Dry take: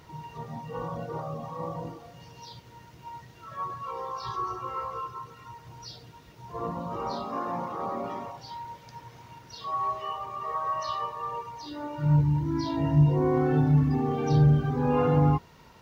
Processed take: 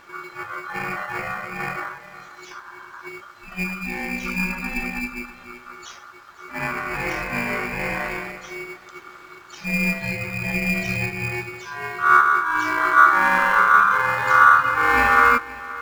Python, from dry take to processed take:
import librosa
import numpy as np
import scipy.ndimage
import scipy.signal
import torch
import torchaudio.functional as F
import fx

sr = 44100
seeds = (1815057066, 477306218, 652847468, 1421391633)

p1 = fx.octave_divider(x, sr, octaves=1, level_db=-2.0)
p2 = fx.dynamic_eq(p1, sr, hz=1100.0, q=1.4, threshold_db=-41.0, ratio=4.0, max_db=5)
p3 = fx.sample_hold(p2, sr, seeds[0], rate_hz=2400.0, jitter_pct=0)
p4 = p2 + (p3 * 10.0 ** (-9.0 / 20.0))
p5 = fx.peak_eq(p4, sr, hz=280.0, db=14.5, octaves=1.0, at=(2.51, 3.09))
p6 = p5 + fx.echo_single(p5, sr, ms=520, db=-18.0, dry=0)
p7 = p6 * np.sin(2.0 * np.pi * 1300.0 * np.arange(len(p6)) / sr)
y = p7 * 10.0 ** (5.0 / 20.0)